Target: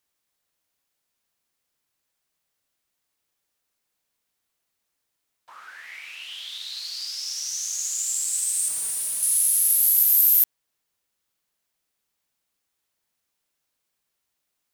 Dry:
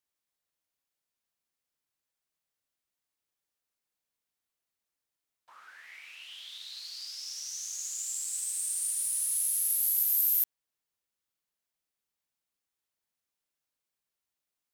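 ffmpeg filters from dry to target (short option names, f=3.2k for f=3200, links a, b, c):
-filter_complex "[0:a]asettb=1/sr,asplit=3[a][b][c];[a]atrim=end=8.684[d];[b]atrim=start=8.68:end=9.23,asetpts=PTS-STARTPTS,afade=t=in:d=0.004:c=qsin,afade=t=out:st=0.546:d=0.004:c=qsin,asoftclip=type=hard:threshold=-35dB[e];[c]atrim=start=9.226[f];[d][e]acrossfade=d=0.004:c1=hsin:c2=qsin[g];[g][f]acrossfade=d=0.004:c1=qsin:c2=hsin,volume=9dB"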